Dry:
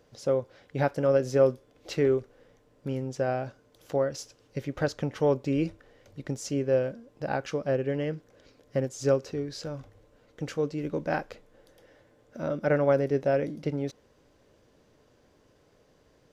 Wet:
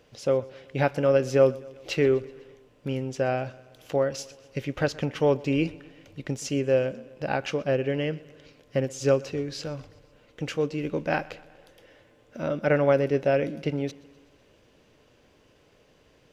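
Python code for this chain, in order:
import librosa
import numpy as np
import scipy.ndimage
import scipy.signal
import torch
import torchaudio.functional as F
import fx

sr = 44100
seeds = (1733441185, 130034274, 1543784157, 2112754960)

p1 = fx.peak_eq(x, sr, hz=2700.0, db=8.5, octaves=0.73)
p2 = p1 + fx.echo_feedback(p1, sr, ms=125, feedback_pct=59, wet_db=-22, dry=0)
y = p2 * 10.0 ** (2.0 / 20.0)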